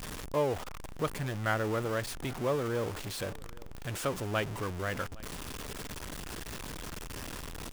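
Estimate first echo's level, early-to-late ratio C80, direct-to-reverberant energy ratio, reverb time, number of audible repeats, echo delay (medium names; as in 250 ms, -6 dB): -23.0 dB, no reverb, no reverb, no reverb, 1, 812 ms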